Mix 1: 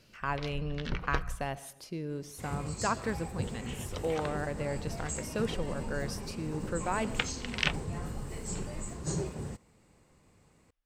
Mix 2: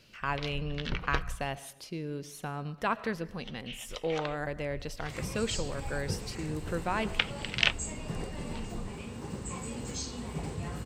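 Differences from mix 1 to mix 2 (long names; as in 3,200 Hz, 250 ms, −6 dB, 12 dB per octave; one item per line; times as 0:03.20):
second sound: entry +2.70 s
master: add parametric band 3,100 Hz +5.5 dB 1.2 octaves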